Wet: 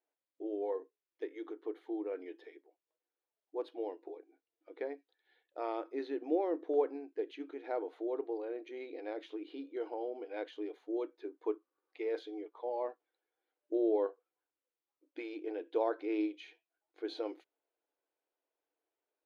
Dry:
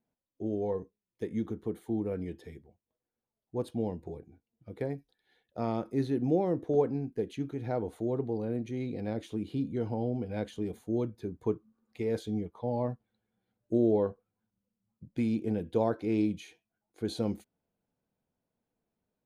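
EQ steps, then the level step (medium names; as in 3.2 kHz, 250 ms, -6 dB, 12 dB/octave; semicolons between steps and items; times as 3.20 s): brick-wall FIR high-pass 280 Hz; distance through air 290 m; tilt shelf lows -4 dB, about 1.2 kHz; 0.0 dB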